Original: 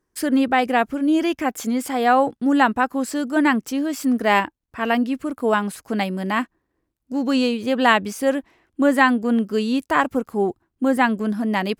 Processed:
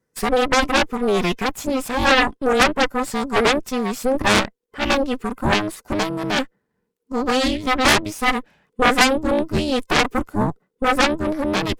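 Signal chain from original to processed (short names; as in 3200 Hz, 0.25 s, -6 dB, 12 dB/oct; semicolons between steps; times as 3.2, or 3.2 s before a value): band inversion scrambler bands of 500 Hz; added harmonics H 7 -10 dB, 8 -10 dB, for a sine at -1.5 dBFS; Doppler distortion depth 0.14 ms; gain -1.5 dB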